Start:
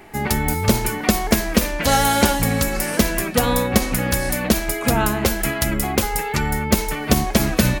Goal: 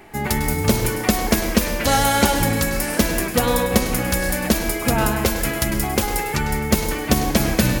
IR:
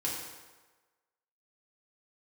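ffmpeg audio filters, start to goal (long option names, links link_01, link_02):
-filter_complex "[0:a]asplit=2[link_01][link_02];[1:a]atrim=start_sample=2205,afade=type=out:start_time=0.34:duration=0.01,atrim=end_sample=15435,adelay=100[link_03];[link_02][link_03]afir=irnorm=-1:irlink=0,volume=-11.5dB[link_04];[link_01][link_04]amix=inputs=2:normalize=0,volume=-1dB"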